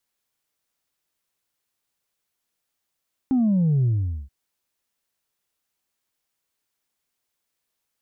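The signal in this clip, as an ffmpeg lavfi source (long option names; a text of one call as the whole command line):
ffmpeg -f lavfi -i "aevalsrc='0.141*clip((0.98-t)/0.44,0,1)*tanh(1.12*sin(2*PI*270*0.98/log(65/270)*(exp(log(65/270)*t/0.98)-1)))/tanh(1.12)':duration=0.98:sample_rate=44100" out.wav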